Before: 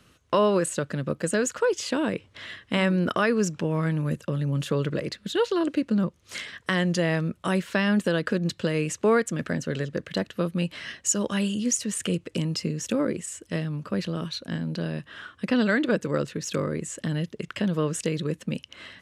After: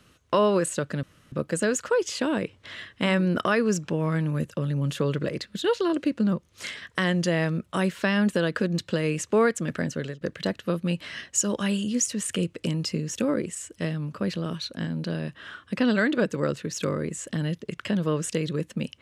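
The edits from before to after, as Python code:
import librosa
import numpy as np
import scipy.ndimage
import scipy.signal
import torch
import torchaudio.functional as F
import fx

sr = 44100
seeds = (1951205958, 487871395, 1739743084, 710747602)

y = fx.edit(x, sr, fx.insert_room_tone(at_s=1.03, length_s=0.29),
    fx.fade_out_to(start_s=9.57, length_s=0.35, curve='qsin', floor_db=-18.0), tone=tone)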